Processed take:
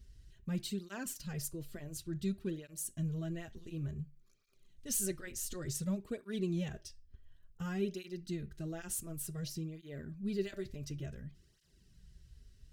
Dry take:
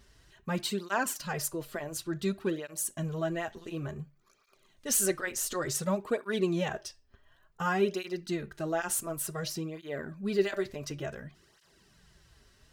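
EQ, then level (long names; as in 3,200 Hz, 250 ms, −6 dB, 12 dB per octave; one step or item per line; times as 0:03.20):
guitar amp tone stack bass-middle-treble 10-0-1
+13.0 dB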